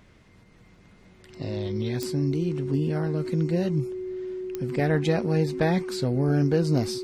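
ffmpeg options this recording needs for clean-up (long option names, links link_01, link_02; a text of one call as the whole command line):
ffmpeg -i in.wav -af "adeclick=threshold=4,bandreject=frequency=370:width=30" out.wav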